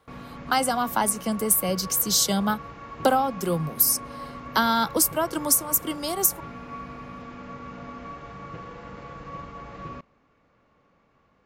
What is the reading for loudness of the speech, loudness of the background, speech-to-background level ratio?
-23.0 LUFS, -39.5 LUFS, 16.5 dB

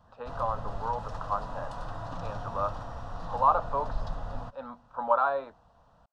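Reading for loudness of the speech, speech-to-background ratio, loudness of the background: -30.5 LUFS, 9.5 dB, -40.0 LUFS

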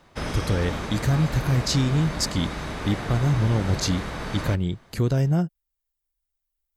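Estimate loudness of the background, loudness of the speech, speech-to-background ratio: -31.5 LUFS, -25.0 LUFS, 6.5 dB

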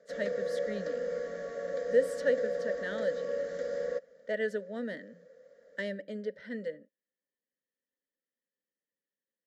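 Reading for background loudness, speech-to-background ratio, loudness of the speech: -35.5 LUFS, 0.0 dB, -35.5 LUFS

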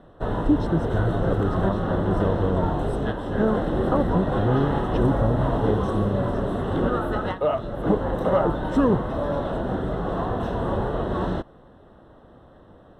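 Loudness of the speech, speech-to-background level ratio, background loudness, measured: -26.0 LUFS, 0.0 dB, -26.0 LUFS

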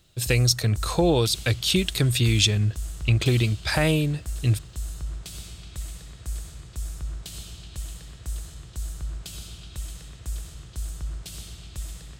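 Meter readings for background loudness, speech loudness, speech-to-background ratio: -37.0 LUFS, -23.0 LUFS, 14.0 dB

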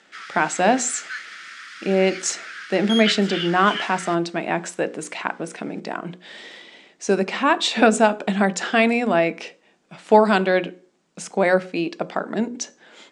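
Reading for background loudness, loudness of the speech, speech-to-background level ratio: -30.5 LUFS, -21.0 LUFS, 9.5 dB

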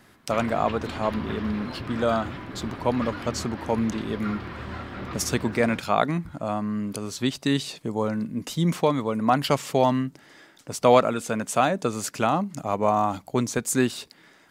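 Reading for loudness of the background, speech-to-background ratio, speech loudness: -36.0 LUFS, 10.5 dB, -25.5 LUFS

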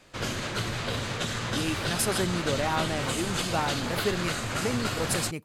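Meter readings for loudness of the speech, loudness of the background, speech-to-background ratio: -31.0 LUFS, -30.5 LUFS, -0.5 dB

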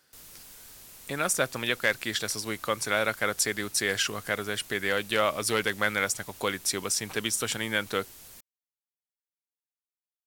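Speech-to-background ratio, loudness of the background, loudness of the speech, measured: 18.5 dB, -46.5 LUFS, -28.0 LUFS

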